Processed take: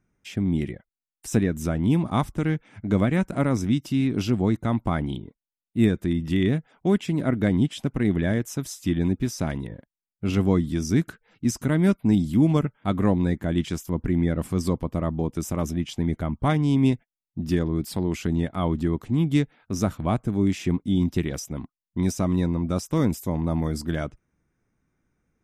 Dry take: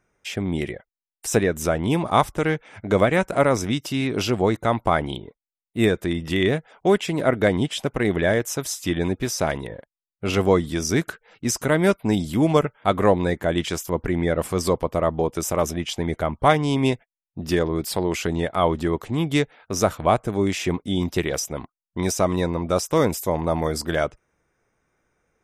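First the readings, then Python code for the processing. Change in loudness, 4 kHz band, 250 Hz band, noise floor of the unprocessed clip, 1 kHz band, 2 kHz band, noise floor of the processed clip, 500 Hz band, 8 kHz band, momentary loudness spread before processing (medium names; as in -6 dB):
-2.0 dB, -8.0 dB, +1.5 dB, under -85 dBFS, -9.0 dB, -8.5 dB, under -85 dBFS, -8.0 dB, -8.0 dB, 8 LU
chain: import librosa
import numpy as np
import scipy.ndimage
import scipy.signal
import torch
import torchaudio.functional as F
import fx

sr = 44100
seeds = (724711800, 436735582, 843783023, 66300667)

y = fx.low_shelf_res(x, sr, hz=350.0, db=9.0, q=1.5)
y = F.gain(torch.from_numpy(y), -8.0).numpy()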